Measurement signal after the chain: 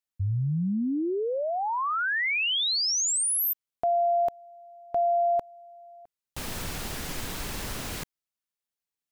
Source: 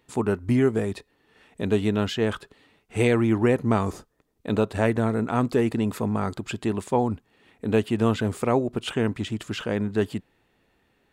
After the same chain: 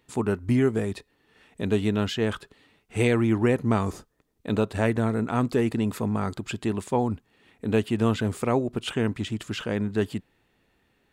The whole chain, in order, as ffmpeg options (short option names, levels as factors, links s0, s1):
-af "equalizer=f=650:w=0.59:g=-2.5"